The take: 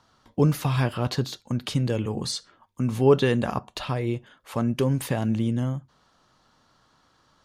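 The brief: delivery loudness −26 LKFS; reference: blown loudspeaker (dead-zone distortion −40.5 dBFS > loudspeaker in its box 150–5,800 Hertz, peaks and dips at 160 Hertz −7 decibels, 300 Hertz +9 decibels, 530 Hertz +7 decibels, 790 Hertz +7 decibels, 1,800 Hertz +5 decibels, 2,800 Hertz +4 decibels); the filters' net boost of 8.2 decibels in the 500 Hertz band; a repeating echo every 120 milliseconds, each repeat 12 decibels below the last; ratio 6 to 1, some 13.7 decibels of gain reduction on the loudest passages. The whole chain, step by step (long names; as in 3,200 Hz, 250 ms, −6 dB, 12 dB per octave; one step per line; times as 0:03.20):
parametric band 500 Hz +5 dB
downward compressor 6 to 1, threshold −24 dBFS
repeating echo 120 ms, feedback 25%, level −12 dB
dead-zone distortion −40.5 dBFS
loudspeaker in its box 150–5,800 Hz, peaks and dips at 160 Hz −7 dB, 300 Hz +9 dB, 530 Hz +7 dB, 790 Hz +7 dB, 1,800 Hz +5 dB, 2,800 Hz +4 dB
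level +3 dB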